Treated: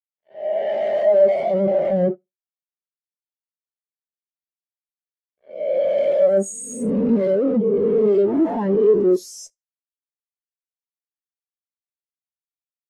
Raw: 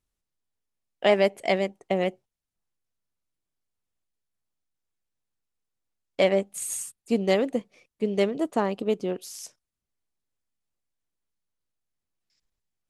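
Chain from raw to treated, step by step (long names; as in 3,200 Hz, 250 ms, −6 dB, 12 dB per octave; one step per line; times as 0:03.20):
peak hold with a rise ahead of every peak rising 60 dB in 1.20 s
0:06.50–0:07.16: high-shelf EQ 5,200 Hz −7.5 dB
fuzz pedal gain 52 dB, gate −53 dBFS
repeating echo 77 ms, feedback 37%, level −16.5 dB
every bin expanded away from the loudest bin 2.5 to 1
level +2 dB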